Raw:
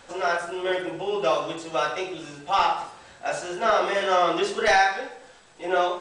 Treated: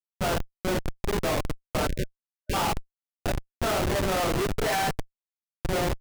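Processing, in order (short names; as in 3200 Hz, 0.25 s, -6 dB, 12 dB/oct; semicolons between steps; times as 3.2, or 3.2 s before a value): Schmitt trigger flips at -22 dBFS; spectral delete 1.88–2.54, 620–1500 Hz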